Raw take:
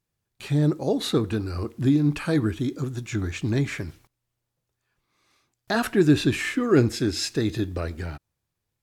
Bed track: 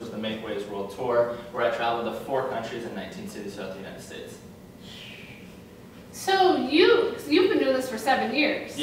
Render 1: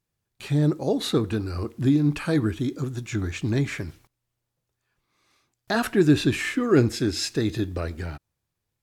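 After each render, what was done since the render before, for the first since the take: no audible change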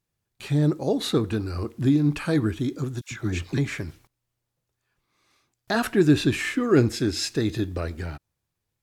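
3.01–3.58 s: phase dispersion lows, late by 106 ms, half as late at 840 Hz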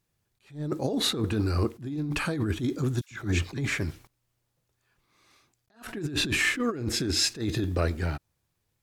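compressor with a negative ratio -27 dBFS, ratio -1; attacks held to a fixed rise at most 190 dB/s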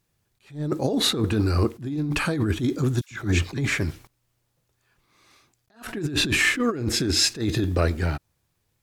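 trim +4.5 dB

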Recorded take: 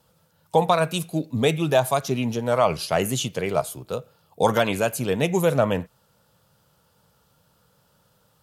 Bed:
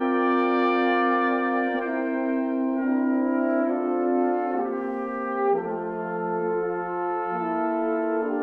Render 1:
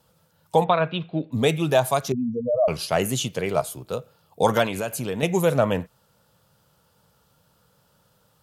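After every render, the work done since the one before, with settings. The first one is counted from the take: 0.64–1.32 s: elliptic low-pass 3.5 kHz, stop band 60 dB; 2.12–2.68 s: spectral contrast enhancement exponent 3.9; 4.66–5.23 s: compression 2.5:1, threshold -25 dBFS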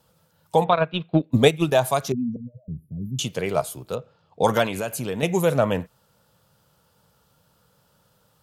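0.72–1.72 s: transient shaper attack +10 dB, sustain -9 dB; 2.36–3.19 s: inverse Chebyshev band-stop 1.1–6.8 kHz, stop band 80 dB; 3.95–4.44 s: distance through air 140 m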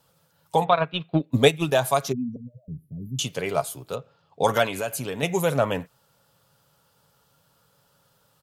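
bass shelf 470 Hz -4.5 dB; comb 7.2 ms, depth 32%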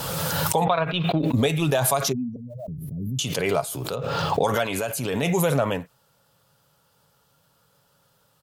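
peak limiter -11.5 dBFS, peak gain reduction 9.5 dB; swell ahead of each attack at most 22 dB/s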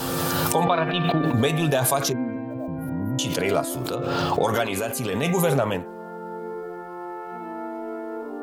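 add bed -7.5 dB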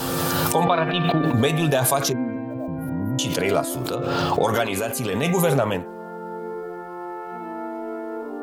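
trim +1.5 dB; peak limiter -2 dBFS, peak gain reduction 1.5 dB

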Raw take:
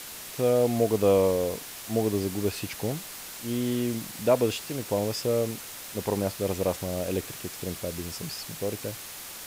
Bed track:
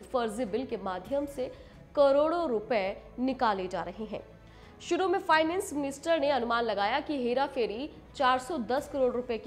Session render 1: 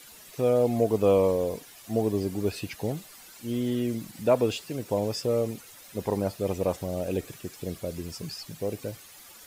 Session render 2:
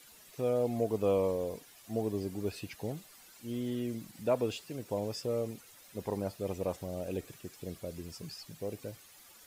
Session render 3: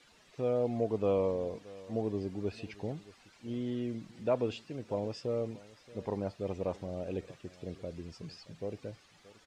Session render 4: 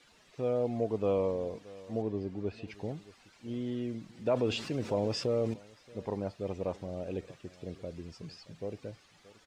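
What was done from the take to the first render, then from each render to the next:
noise reduction 12 dB, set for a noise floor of -41 dBFS
trim -7.5 dB
distance through air 120 m; delay 626 ms -20 dB
2.02–2.68 s: low-pass 3.1 kHz 6 dB/octave; 4.26–5.54 s: level flattener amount 50%

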